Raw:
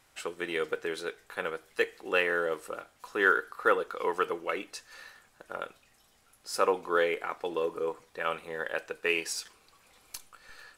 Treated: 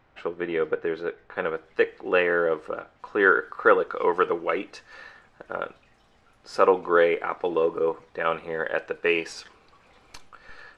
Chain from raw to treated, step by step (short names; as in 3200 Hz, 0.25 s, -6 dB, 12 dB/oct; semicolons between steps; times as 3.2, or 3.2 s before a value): tape spacing loss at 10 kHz 44 dB, from 1.35 s at 10 kHz 31 dB, from 3.41 s at 10 kHz 24 dB; gain +9 dB